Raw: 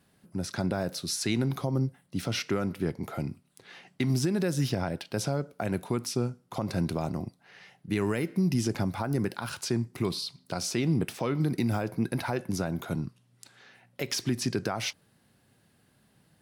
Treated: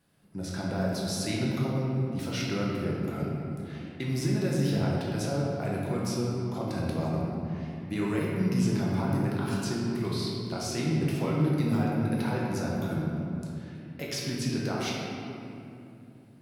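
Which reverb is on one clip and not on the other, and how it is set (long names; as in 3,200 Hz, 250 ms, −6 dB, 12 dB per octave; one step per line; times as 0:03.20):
rectangular room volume 120 cubic metres, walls hard, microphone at 0.67 metres
level −6 dB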